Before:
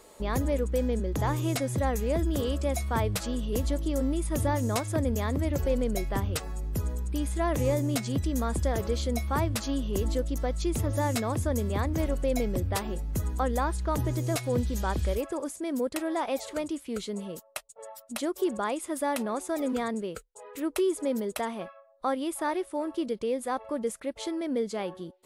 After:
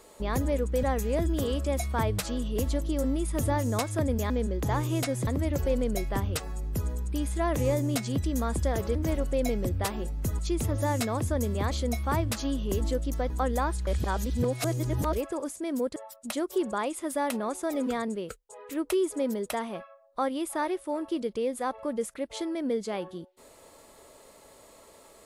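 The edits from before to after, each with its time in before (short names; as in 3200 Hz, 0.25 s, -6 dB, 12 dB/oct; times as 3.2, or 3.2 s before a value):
0.83–1.8 move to 5.27
8.95–10.54 swap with 11.86–13.3
13.87–15.13 reverse
15.96–17.82 cut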